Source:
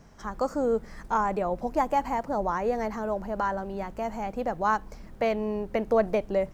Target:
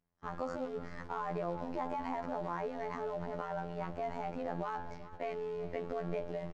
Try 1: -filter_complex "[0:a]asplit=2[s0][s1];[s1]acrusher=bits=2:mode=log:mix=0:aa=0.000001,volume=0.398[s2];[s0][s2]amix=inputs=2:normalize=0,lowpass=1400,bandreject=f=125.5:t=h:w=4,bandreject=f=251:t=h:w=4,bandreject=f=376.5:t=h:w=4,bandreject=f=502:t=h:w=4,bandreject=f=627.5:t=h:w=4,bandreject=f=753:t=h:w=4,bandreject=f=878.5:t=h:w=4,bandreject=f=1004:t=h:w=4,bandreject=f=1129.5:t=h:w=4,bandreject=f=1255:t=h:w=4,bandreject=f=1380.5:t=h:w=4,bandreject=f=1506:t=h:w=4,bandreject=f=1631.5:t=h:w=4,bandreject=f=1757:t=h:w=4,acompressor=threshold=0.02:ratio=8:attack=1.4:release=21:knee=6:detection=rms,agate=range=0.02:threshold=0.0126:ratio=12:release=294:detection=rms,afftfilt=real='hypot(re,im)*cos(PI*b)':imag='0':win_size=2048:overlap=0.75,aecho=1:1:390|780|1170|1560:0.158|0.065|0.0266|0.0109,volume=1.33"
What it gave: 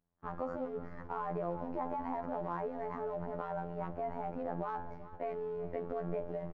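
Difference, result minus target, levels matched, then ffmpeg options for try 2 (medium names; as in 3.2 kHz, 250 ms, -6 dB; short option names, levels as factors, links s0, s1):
4 kHz band -11.0 dB
-filter_complex "[0:a]asplit=2[s0][s1];[s1]acrusher=bits=2:mode=log:mix=0:aa=0.000001,volume=0.398[s2];[s0][s2]amix=inputs=2:normalize=0,lowpass=3800,bandreject=f=125.5:t=h:w=4,bandreject=f=251:t=h:w=4,bandreject=f=376.5:t=h:w=4,bandreject=f=502:t=h:w=4,bandreject=f=627.5:t=h:w=4,bandreject=f=753:t=h:w=4,bandreject=f=878.5:t=h:w=4,bandreject=f=1004:t=h:w=4,bandreject=f=1129.5:t=h:w=4,bandreject=f=1255:t=h:w=4,bandreject=f=1380.5:t=h:w=4,bandreject=f=1506:t=h:w=4,bandreject=f=1631.5:t=h:w=4,bandreject=f=1757:t=h:w=4,acompressor=threshold=0.02:ratio=8:attack=1.4:release=21:knee=6:detection=rms,agate=range=0.02:threshold=0.0126:ratio=12:release=294:detection=rms,afftfilt=real='hypot(re,im)*cos(PI*b)':imag='0':win_size=2048:overlap=0.75,aecho=1:1:390|780|1170|1560:0.158|0.065|0.0266|0.0109,volume=1.33"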